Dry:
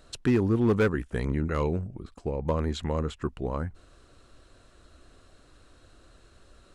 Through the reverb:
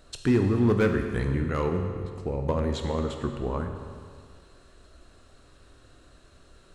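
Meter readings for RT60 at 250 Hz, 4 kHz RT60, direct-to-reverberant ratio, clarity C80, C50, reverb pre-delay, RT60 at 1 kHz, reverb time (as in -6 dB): 2.0 s, 1.9 s, 4.0 dB, 7.0 dB, 5.5 dB, 16 ms, 2.0 s, 2.0 s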